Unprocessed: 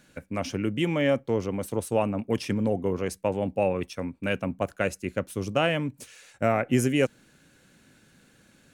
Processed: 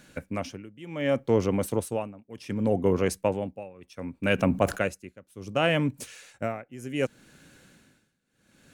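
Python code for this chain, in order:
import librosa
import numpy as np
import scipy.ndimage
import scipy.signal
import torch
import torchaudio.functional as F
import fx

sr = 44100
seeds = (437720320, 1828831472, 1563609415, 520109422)

y = x * (1.0 - 0.95 / 2.0 + 0.95 / 2.0 * np.cos(2.0 * np.pi * 0.67 * (np.arange(len(x)) / sr)))
y = fx.env_flatten(y, sr, amount_pct=50, at=(4.38, 4.78), fade=0.02)
y = F.gain(torch.from_numpy(y), 4.5).numpy()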